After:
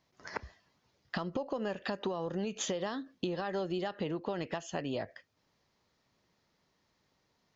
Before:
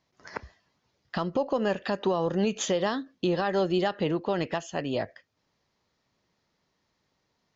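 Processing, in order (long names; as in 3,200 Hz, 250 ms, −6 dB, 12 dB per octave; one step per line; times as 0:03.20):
downward compressor 6 to 1, threshold −32 dBFS, peak gain reduction 10.5 dB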